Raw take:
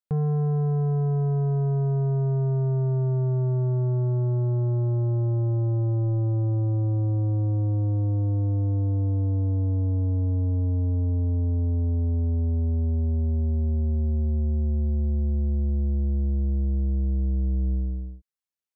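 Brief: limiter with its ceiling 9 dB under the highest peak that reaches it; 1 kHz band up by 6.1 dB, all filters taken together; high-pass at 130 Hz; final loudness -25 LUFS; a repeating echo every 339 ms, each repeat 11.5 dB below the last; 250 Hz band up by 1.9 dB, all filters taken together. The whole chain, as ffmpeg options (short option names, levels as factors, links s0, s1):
-af "highpass=130,equalizer=f=250:t=o:g=3.5,equalizer=f=1000:t=o:g=8.5,alimiter=level_in=1.26:limit=0.0631:level=0:latency=1,volume=0.794,aecho=1:1:339|678|1017:0.266|0.0718|0.0194,volume=2.66"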